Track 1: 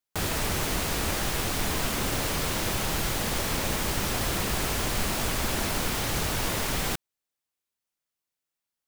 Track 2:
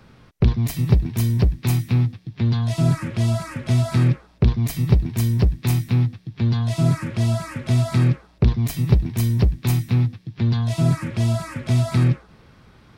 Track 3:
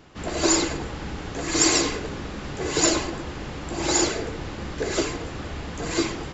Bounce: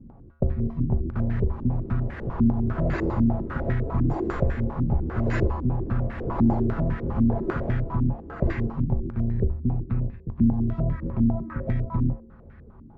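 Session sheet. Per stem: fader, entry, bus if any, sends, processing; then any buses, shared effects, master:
+2.0 dB, 1.00 s, bus A, no send, dry
+2.5 dB, 0.00 s, bus A, no send, octaver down 2 oct, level -1 dB; modulation noise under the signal 31 dB
+1.5 dB, 2.50 s, no bus, no send, dry
bus A: 0.0 dB, low shelf 420 Hz +10.5 dB; compressor 3:1, threshold -12 dBFS, peak gain reduction 13 dB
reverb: off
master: resonator 76 Hz, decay 0.79 s, harmonics odd, mix 80%; stepped low-pass 10 Hz 270–1800 Hz

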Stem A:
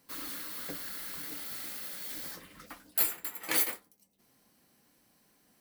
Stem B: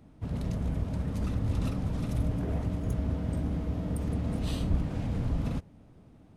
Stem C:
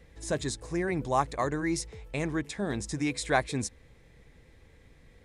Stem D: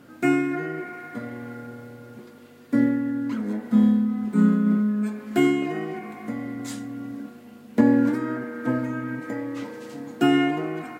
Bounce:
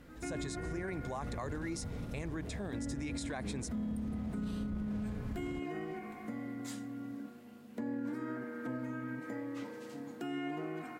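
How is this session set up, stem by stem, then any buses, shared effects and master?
off
-10.5 dB, 0.00 s, no send, dry
-4.5 dB, 0.00 s, no send, dry
-8.5 dB, 0.00 s, no send, compressor 2:1, threshold -29 dBFS, peak gain reduction 9.5 dB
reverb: off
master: limiter -30.5 dBFS, peak gain reduction 15 dB

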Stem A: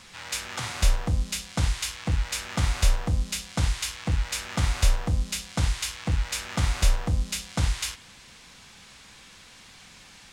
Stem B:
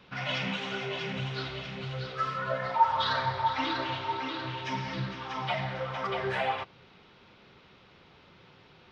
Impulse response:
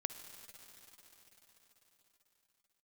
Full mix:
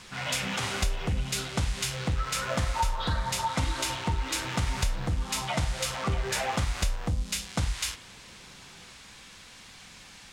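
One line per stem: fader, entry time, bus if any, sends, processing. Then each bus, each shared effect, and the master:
+0.5 dB, 0.00 s, no send, dry
-1.0 dB, 0.00 s, no send, dry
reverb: off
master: compressor 6:1, threshold -24 dBFS, peak gain reduction 10 dB

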